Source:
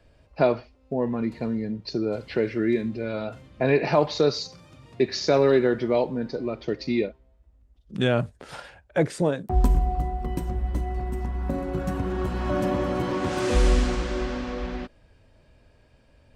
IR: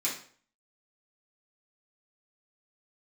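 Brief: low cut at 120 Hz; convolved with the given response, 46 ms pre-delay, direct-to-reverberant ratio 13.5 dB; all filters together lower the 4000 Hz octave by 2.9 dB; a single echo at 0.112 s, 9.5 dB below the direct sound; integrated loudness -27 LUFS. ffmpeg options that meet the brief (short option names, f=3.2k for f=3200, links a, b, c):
-filter_complex "[0:a]highpass=120,equalizer=f=4k:t=o:g=-3.5,aecho=1:1:112:0.335,asplit=2[a][b];[1:a]atrim=start_sample=2205,adelay=46[c];[b][c]afir=irnorm=-1:irlink=0,volume=-19.5dB[d];[a][d]amix=inputs=2:normalize=0,volume=-0.5dB"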